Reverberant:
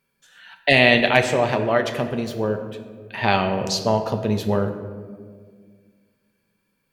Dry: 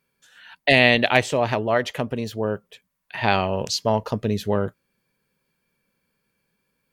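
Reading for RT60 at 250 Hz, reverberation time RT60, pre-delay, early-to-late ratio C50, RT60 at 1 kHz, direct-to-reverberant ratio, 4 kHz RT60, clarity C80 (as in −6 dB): 2.6 s, 1.9 s, 5 ms, 8.5 dB, 1.6 s, 5.5 dB, 0.85 s, 10.0 dB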